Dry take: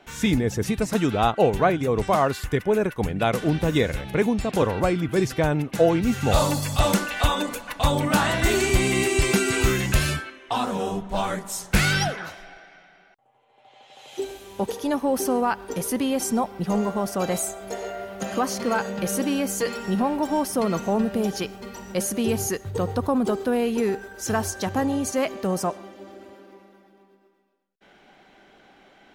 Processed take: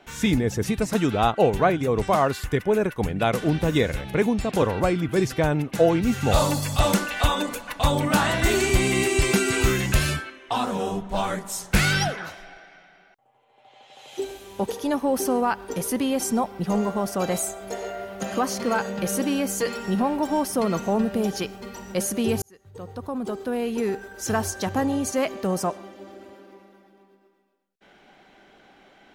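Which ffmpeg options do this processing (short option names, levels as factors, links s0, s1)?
-filter_complex "[0:a]asplit=2[s0][s1];[s0]atrim=end=22.42,asetpts=PTS-STARTPTS,afade=t=out:st=22.416:d=0.004:c=hsin[s2];[s1]atrim=start=22.42,asetpts=PTS-STARTPTS,afade=t=in:d=1.79[s3];[s2][s3]concat=n=2:v=0:a=1"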